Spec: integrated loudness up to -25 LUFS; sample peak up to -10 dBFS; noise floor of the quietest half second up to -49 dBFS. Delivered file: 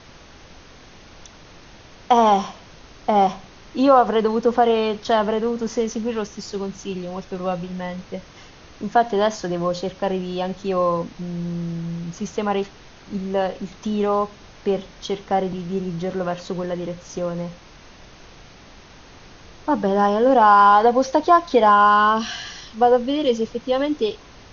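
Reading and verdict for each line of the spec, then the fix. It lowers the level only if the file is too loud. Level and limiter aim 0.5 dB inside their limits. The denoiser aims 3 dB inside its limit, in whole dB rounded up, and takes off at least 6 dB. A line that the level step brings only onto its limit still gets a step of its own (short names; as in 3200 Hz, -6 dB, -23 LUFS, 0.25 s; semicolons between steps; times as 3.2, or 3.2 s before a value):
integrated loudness -20.5 LUFS: fail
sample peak -3.0 dBFS: fail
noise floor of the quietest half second -45 dBFS: fail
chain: gain -5 dB; limiter -10.5 dBFS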